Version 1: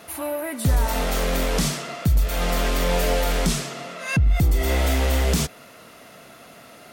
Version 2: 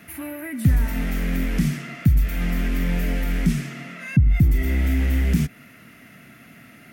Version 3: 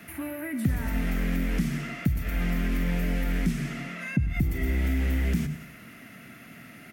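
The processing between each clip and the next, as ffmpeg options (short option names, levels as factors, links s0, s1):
-filter_complex "[0:a]equalizer=f=125:t=o:w=1:g=5,equalizer=f=250:t=o:w=1:g=6,equalizer=f=500:t=o:w=1:g=-11,equalizer=f=1000:t=o:w=1:g=-10,equalizer=f=2000:t=o:w=1:g=8,equalizer=f=4000:t=o:w=1:g=-9,equalizer=f=8000:t=o:w=1:g=-7,acrossover=split=490[s0][s1];[s1]acompressor=threshold=0.02:ratio=3[s2];[s0][s2]amix=inputs=2:normalize=0"
-filter_complex "[0:a]bandreject=f=50:t=h:w=6,bandreject=f=100:t=h:w=6,bandreject=f=150:t=h:w=6,aecho=1:1:97|194|291|388:0.188|0.081|0.0348|0.015,acrossover=split=270|2500[s0][s1][s2];[s0]acompressor=threshold=0.0631:ratio=4[s3];[s1]acompressor=threshold=0.02:ratio=4[s4];[s2]acompressor=threshold=0.00631:ratio=4[s5];[s3][s4][s5]amix=inputs=3:normalize=0"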